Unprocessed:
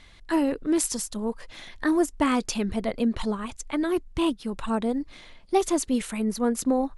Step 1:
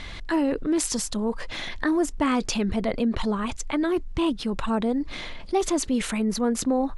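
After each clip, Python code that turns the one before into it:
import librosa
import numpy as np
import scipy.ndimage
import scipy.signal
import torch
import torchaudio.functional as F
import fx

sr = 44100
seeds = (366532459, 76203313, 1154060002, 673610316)

y = fx.air_absorb(x, sr, metres=51.0)
y = fx.env_flatten(y, sr, amount_pct=50)
y = y * librosa.db_to_amplitude(-2.0)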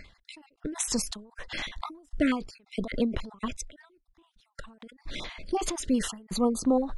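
y = fx.spec_dropout(x, sr, seeds[0], share_pct=35)
y = fx.end_taper(y, sr, db_per_s=120.0)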